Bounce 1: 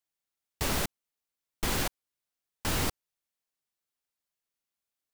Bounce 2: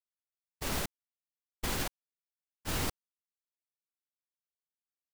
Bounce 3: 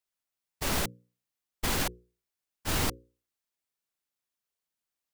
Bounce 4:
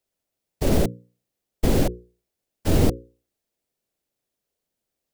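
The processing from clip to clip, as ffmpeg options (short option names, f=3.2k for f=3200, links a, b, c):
-af "agate=range=-33dB:threshold=-22dB:ratio=3:detection=peak,volume=2.5dB"
-filter_complex "[0:a]bandreject=f=60:t=h:w=6,bandreject=f=120:t=h:w=6,bandreject=f=180:t=h:w=6,bandreject=f=240:t=h:w=6,bandreject=f=300:t=h:w=6,bandreject=f=360:t=h:w=6,bandreject=f=420:t=h:w=6,bandreject=f=480:t=h:w=6,bandreject=f=540:t=h:w=6,asplit=2[a][b];[b]asoftclip=type=tanh:threshold=-35dB,volume=-4dB[c];[a][c]amix=inputs=2:normalize=0,volume=2.5dB"
-filter_complex "[0:a]lowshelf=f=770:t=q:w=1.5:g=8.5,acrossover=split=640[a][b];[b]alimiter=level_in=3.5dB:limit=-24dB:level=0:latency=1:release=77,volume=-3.5dB[c];[a][c]amix=inputs=2:normalize=0,volume=4.5dB"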